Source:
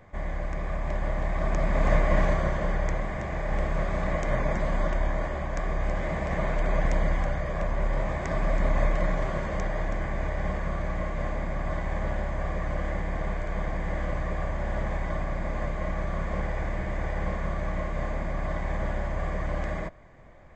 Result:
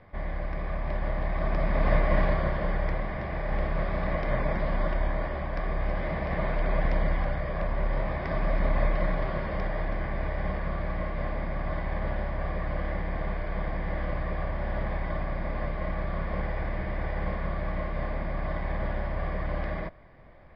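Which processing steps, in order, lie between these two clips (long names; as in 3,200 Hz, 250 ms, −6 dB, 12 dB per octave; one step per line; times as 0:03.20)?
Butterworth low-pass 5,200 Hz 96 dB per octave
level −1 dB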